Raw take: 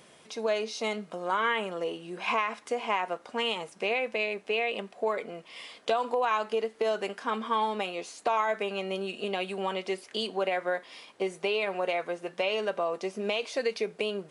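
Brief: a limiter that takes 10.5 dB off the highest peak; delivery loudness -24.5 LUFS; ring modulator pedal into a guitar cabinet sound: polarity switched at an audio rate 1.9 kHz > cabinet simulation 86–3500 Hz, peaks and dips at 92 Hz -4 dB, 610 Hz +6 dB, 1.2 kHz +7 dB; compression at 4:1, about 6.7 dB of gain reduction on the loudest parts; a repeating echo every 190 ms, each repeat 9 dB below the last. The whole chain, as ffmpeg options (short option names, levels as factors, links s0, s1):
-af "acompressor=threshold=0.0282:ratio=4,alimiter=level_in=1.58:limit=0.0631:level=0:latency=1,volume=0.631,aecho=1:1:190|380|570|760:0.355|0.124|0.0435|0.0152,aeval=exprs='val(0)*sgn(sin(2*PI*1900*n/s))':c=same,highpass=86,equalizer=f=92:t=q:w=4:g=-4,equalizer=f=610:t=q:w=4:g=6,equalizer=f=1200:t=q:w=4:g=7,lowpass=f=3500:w=0.5412,lowpass=f=3500:w=1.3066,volume=3.55"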